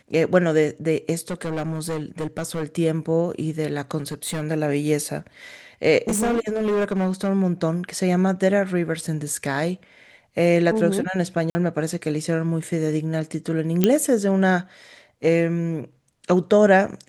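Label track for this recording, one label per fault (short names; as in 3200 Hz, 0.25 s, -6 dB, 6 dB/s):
1.180000	2.640000	clipped -22.5 dBFS
3.980000	4.430000	clipped -23 dBFS
6.080000	7.300000	clipped -18 dBFS
11.500000	11.550000	gap 50 ms
13.840000	13.840000	pop -4 dBFS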